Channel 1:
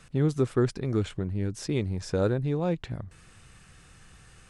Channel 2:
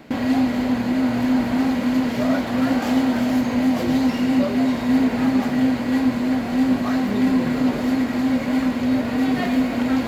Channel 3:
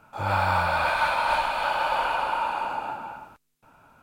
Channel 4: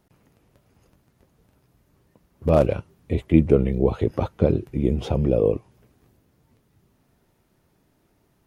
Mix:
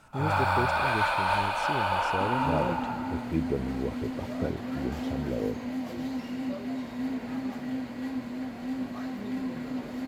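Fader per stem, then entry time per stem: −7.0, −14.5, −2.5, −13.0 decibels; 0.00, 2.10, 0.00, 0.00 seconds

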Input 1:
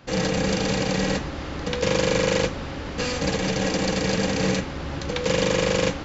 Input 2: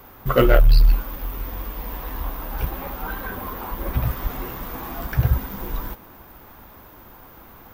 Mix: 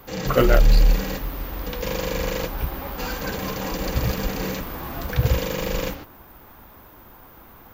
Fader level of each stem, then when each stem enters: −6.0, −1.5 decibels; 0.00, 0.00 seconds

